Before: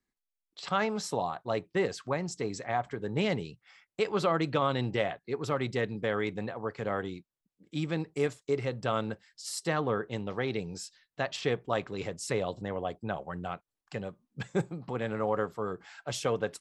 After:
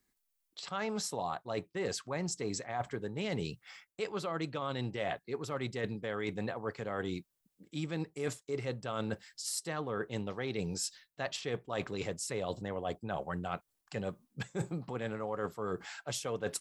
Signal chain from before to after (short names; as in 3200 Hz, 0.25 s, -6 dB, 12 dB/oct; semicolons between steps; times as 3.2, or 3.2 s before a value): high shelf 7000 Hz +10 dB; reverse; compressor 10:1, threshold -37 dBFS, peak gain reduction 15.5 dB; reverse; gain +4.5 dB